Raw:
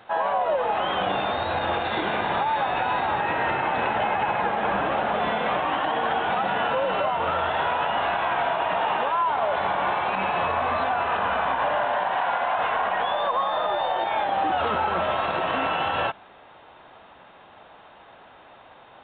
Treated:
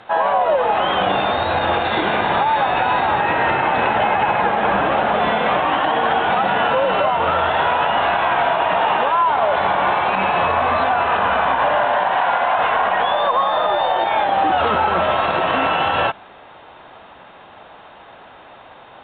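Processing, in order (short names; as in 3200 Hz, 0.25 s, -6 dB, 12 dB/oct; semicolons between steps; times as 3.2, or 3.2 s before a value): LPF 9800 Hz; gain +7 dB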